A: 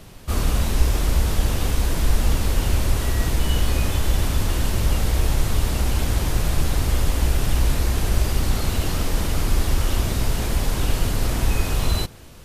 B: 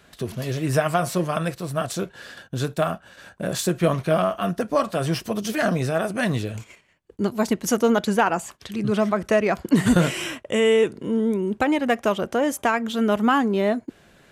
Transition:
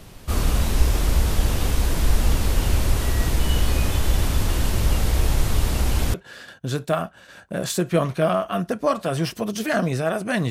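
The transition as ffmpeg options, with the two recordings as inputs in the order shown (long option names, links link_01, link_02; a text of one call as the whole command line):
ffmpeg -i cue0.wav -i cue1.wav -filter_complex "[0:a]apad=whole_dur=10.5,atrim=end=10.5,atrim=end=6.142[link_01];[1:a]atrim=start=2.028:end=6.39[link_02];[link_01][link_02]acrossfade=duration=0.004:curve1=hsin:curve2=hsin" out.wav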